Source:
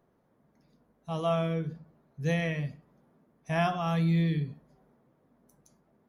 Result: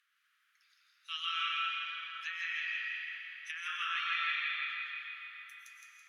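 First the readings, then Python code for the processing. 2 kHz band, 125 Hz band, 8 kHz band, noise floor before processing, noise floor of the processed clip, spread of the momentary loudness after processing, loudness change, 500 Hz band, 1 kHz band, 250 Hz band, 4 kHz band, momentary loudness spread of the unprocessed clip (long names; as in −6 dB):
+5.5 dB, below −40 dB, can't be measured, −70 dBFS, −75 dBFS, 14 LU, −5.5 dB, below −40 dB, −4.5 dB, below −40 dB, +8.5 dB, 13 LU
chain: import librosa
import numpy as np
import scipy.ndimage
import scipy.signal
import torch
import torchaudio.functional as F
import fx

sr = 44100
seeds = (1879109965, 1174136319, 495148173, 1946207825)

p1 = fx.env_lowpass_down(x, sr, base_hz=2300.0, full_db=-26.0)
p2 = scipy.signal.sosfilt(scipy.signal.butter(12, 1300.0, 'highpass', fs=sr, output='sos'), p1)
p3 = fx.peak_eq(p2, sr, hz=2900.0, db=10.5, octaves=1.0)
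p4 = fx.over_compress(p3, sr, threshold_db=-39.0, ratio=-1.0)
p5 = p4 + fx.echo_feedback(p4, sr, ms=165, feedback_pct=49, wet_db=-3.0, dry=0)
y = fx.rev_freeverb(p5, sr, rt60_s=4.4, hf_ratio=0.7, predelay_ms=75, drr_db=-0.5)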